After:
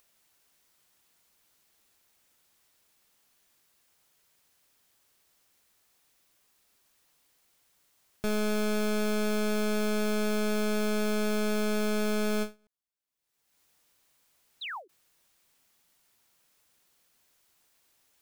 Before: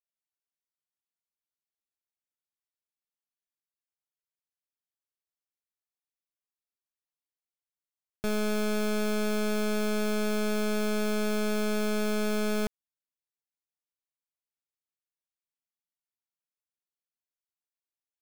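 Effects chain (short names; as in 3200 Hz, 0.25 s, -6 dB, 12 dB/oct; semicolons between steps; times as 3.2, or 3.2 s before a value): upward compressor, threshold -48 dBFS; painted sound fall, 14.61–14.88, 320–4200 Hz -37 dBFS; ending taper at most 260 dB/s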